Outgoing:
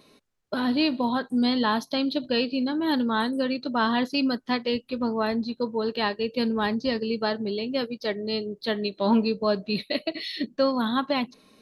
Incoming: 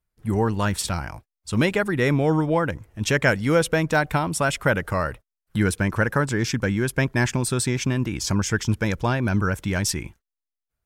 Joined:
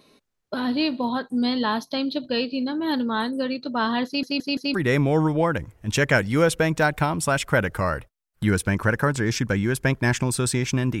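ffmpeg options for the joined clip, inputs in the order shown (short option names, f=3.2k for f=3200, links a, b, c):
-filter_complex "[0:a]apad=whole_dur=11,atrim=end=11,asplit=4[a][b][c][d];[a]atrim=end=4.232[e];[b]atrim=start=4.058:end=4.232[f];[c]atrim=start=4.058:end=4.232[g];[d]atrim=start=4.058:end=4.232[h];[1:a]atrim=start=1.868:end=8.13[i];[e][f]acrossfade=d=0.004:c1=hsin:c2=hsin[j];[j][g]acrossfade=d=0.004:c1=hsin:c2=hsin[k];[k][h]acrossfade=d=0.004:c1=hsin:c2=hsin[l];[l][i]acrossfade=d=0.004:c1=hsin:c2=hsin"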